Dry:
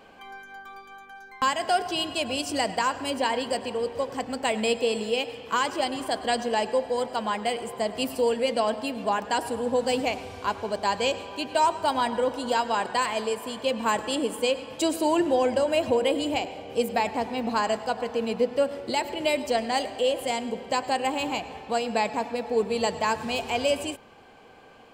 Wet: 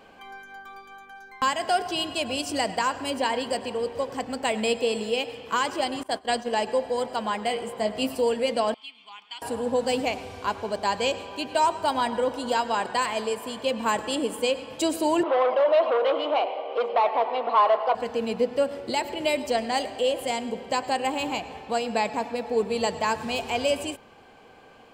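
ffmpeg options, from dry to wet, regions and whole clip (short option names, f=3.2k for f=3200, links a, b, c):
-filter_complex "[0:a]asettb=1/sr,asplit=3[a][b][c];[a]atrim=end=6.034[d];[b]atrim=start=6.03:end=6.67,asetpts=PTS-STARTPTS,afade=t=in:d=0.004:c=qsin,afade=t=out:st=0.636:d=0.004:c=qsin,agate=range=-33dB:threshold=-27dB:ratio=3:release=100:detection=peak,equalizer=f=92:w=4.1:g=-5[e];[c]atrim=start=6.666[f];[d][e]acrossfade=d=0.004:c1=hsin:c2=qsin[g];[g][f]acrossfade=d=0.004:c1=qsin:c2=hsin,asettb=1/sr,asplit=3[h][i][j];[h]atrim=end=7.484[k];[i]atrim=start=7.48:end=8.13,asetpts=PTS-STARTPTS,afade=t=in:d=0.004:c=qsin,afade=t=out:st=0.646:d=0.004:c=qsin,highshelf=f=5.9k:g=-4.5,asplit=2[l][m];[m]adelay=19,volume=-6.5dB[n];[l][n]amix=inputs=2:normalize=0,atrim=end_sample=28665[o];[j]atrim=start=8.126[p];[k][o]acrossfade=d=0.004:c1=hsin:c2=qsin[q];[q][p]acrossfade=d=0.004:c1=qsin:c2=hsin,asettb=1/sr,asplit=3[r][s][t];[r]atrim=end=8.744[u];[s]atrim=start=8.74:end=9.42,asetpts=PTS-STARTPTS,afade=t=in:d=0.004:c=qsin,afade=t=out:st=0.676:d=0.004:c=qsin,bandpass=f=3k:t=q:w=4.8,aecho=1:1:0.9:0.75,atrim=end_sample=29988[v];[t]atrim=start=9.416[w];[u][v]acrossfade=d=0.004:c1=hsin:c2=qsin[x];[x][w]acrossfade=d=0.004:c1=qsin:c2=hsin,asettb=1/sr,asplit=3[y][z][aa];[y]atrim=end=15.234[ab];[z]atrim=start=15.23:end=17.95,asetpts=PTS-STARTPTS,afade=t=in:d=0.004:c=qsin,afade=t=out:st=2.716:d=0.004:c=qsin,acontrast=32,asoftclip=type=hard:threshold=-20dB,highpass=f=420:w=0.5412,highpass=f=420:w=1.3066,equalizer=f=630:t=q:w=4:g=5,equalizer=f=1.1k:t=q:w=4:g=9,equalizer=f=1.7k:t=q:w=4:g=-8,equalizer=f=2.5k:t=q:w=4:g=-4,lowpass=f=3.2k:w=0.5412,lowpass=f=3.2k:w=1.3066[ac];[aa]atrim=start=17.946[ad];[ab][ac]acrossfade=d=0.004:c1=hsin:c2=qsin[ae];[ae][ad]acrossfade=d=0.004:c1=qsin:c2=hsin"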